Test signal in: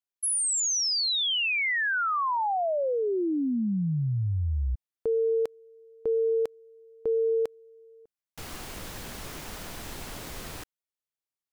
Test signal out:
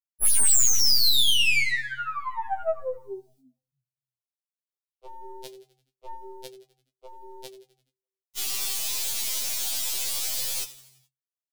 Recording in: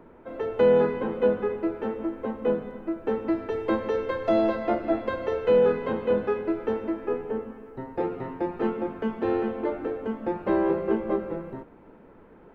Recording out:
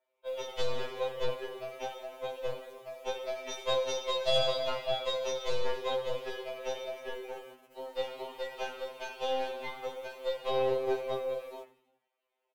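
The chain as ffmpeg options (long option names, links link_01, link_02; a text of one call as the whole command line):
ffmpeg -i in.wav -filter_complex "[0:a]adynamicequalizer=threshold=0.00126:dfrequency=2800:dqfactor=5.6:tfrequency=2800:tqfactor=5.6:attack=5:release=100:ratio=0.375:range=2:mode=cutabove:tftype=bell,highpass=frequency=470:width=0.5412,highpass=frequency=470:width=1.3066,equalizer=frequency=730:width=0.61:gain=6.5,aexciter=amount=9.9:drive=7.2:freq=2400,flanger=delay=9.4:depth=3.5:regen=55:speed=0.29:shape=sinusoidal,aeval=exprs='(tanh(7.94*val(0)+0.55)-tanh(0.55))/7.94':channel_layout=same,agate=range=-24dB:threshold=-51dB:ratio=16:release=34:detection=rms,asplit=6[link_01][link_02][link_03][link_04][link_05][link_06];[link_02]adelay=85,afreqshift=-33,volume=-15.5dB[link_07];[link_03]adelay=170,afreqshift=-66,volume=-20.9dB[link_08];[link_04]adelay=255,afreqshift=-99,volume=-26.2dB[link_09];[link_05]adelay=340,afreqshift=-132,volume=-31.6dB[link_10];[link_06]adelay=425,afreqshift=-165,volume=-36.9dB[link_11];[link_01][link_07][link_08][link_09][link_10][link_11]amix=inputs=6:normalize=0,afftfilt=real='re*2.45*eq(mod(b,6),0)':imag='im*2.45*eq(mod(b,6),0)':win_size=2048:overlap=0.75" out.wav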